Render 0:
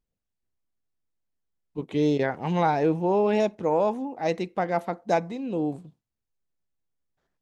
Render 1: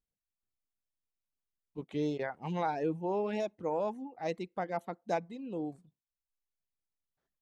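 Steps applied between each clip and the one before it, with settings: reverb removal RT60 0.7 s; gain -9 dB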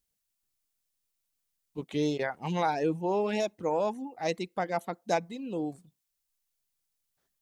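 high shelf 3300 Hz +10.5 dB; gain +4 dB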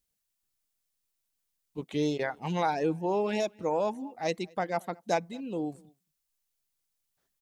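outdoor echo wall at 38 m, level -27 dB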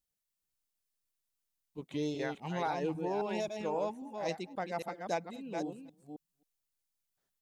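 reverse delay 0.268 s, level -5.5 dB; gain -6.5 dB

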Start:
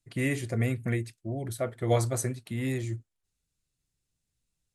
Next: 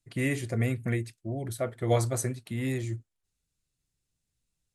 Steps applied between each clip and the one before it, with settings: nothing audible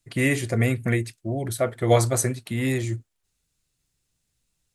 low shelf 380 Hz -3.5 dB; gain +8.5 dB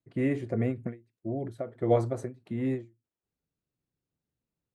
band-pass 320 Hz, Q 0.67; ending taper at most 200 dB/s; gain -3 dB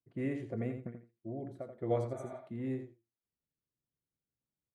spectral repair 2.18–2.38, 560–5800 Hz before; feedback echo 84 ms, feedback 15%, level -8 dB; mismatched tape noise reduction decoder only; gain -8.5 dB

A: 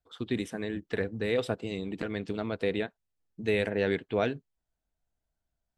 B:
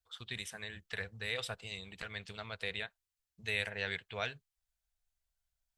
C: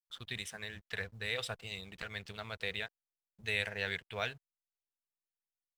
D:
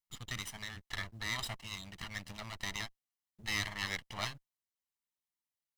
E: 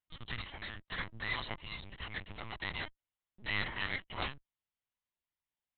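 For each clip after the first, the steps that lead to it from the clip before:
passive tone stack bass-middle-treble 10-0-10; gain +3 dB
companded quantiser 8-bit; backlash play -54.5 dBFS; gain +1 dB
minimum comb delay 1 ms; gain +2 dB
LPC vocoder at 8 kHz pitch kept; gain +1.5 dB

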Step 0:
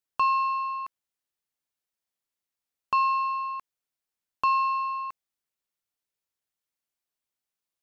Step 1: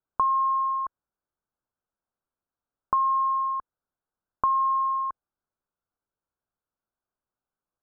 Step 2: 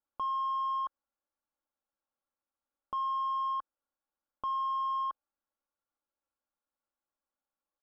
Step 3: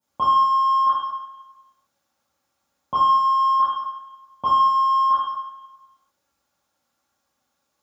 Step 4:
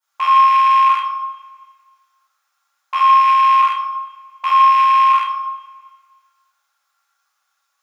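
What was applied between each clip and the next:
compressor, threshold -25 dBFS, peak gain reduction 5.5 dB; steep low-pass 1600 Hz 96 dB/oct; low shelf 65 Hz +7 dB; gain +5 dB
comb 3.6 ms, depth 68%; limiter -21 dBFS, peak gain reduction 10 dB; overdrive pedal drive 10 dB, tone 1100 Hz, clips at -21 dBFS; gain -5.5 dB
reverb RT60 1.0 s, pre-delay 3 ms, DRR -13 dB; gain +8.5 dB
rattling part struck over -50 dBFS, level -19 dBFS; resonant high-pass 1300 Hz, resonance Q 2; two-slope reverb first 0.49 s, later 1.8 s, from -18 dB, DRR 2 dB; gain +1 dB

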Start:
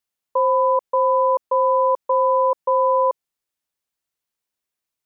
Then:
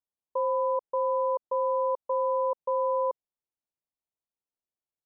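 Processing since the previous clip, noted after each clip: LPF 1000 Hz 24 dB/oct; gain -8 dB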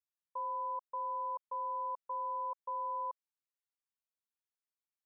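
resonant low shelf 780 Hz -11.5 dB, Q 1.5; gain -7 dB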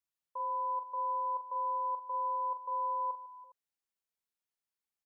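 tapped delay 42/151/330/407 ms -9/-18.5/-18.5/-19.5 dB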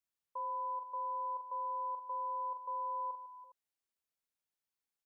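limiter -32 dBFS, peak gain reduction 3.5 dB; gain -1.5 dB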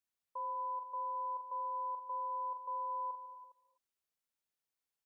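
non-linear reverb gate 0.27 s rising, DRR 10.5 dB; gain -1 dB

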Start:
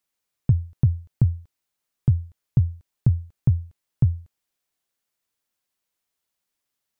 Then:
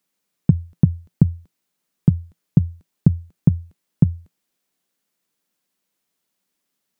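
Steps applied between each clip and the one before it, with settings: EQ curve 120 Hz 0 dB, 170 Hz +15 dB, 780 Hz +6 dB; gain -1.5 dB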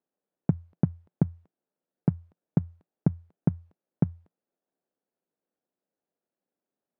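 median filter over 41 samples; band-pass 750 Hz, Q 0.83; gain +2 dB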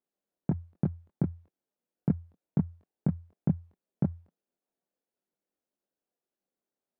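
chorus voices 6, 1 Hz, delay 23 ms, depth 3 ms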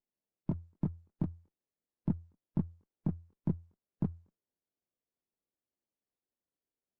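nonlinear frequency compression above 1000 Hz 1.5:1; running maximum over 33 samples; gain -5 dB

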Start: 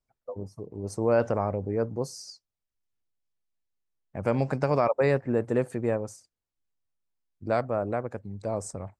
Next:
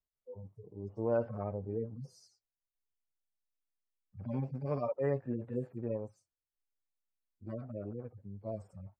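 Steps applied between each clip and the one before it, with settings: median-filter separation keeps harmonic; high shelf 3700 Hz -7.5 dB; gain -7.5 dB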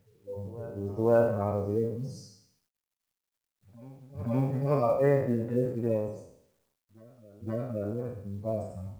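spectral trails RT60 0.71 s; reverse echo 0.518 s -20.5 dB; companded quantiser 8-bit; gain +7.5 dB

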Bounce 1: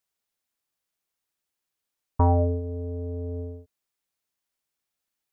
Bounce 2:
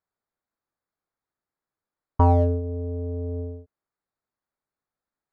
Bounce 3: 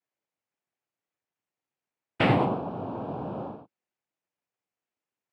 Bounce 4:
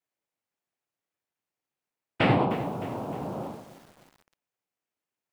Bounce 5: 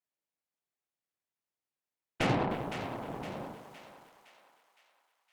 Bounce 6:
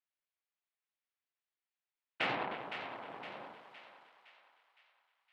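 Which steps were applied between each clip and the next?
Wiener smoothing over 15 samples; bell 1300 Hz +2.5 dB; gain +2.5 dB
noise vocoder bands 4; gain -1.5 dB
lo-fi delay 0.307 s, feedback 55%, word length 7-bit, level -14 dB
vibrato 0.43 Hz 5.9 cents; added harmonics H 8 -18 dB, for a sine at -10.5 dBFS; thinning echo 0.513 s, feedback 52%, high-pass 860 Hz, level -8 dB; gain -7 dB
band-pass 6400 Hz, Q 0.7; air absorption 470 m; gain +12.5 dB

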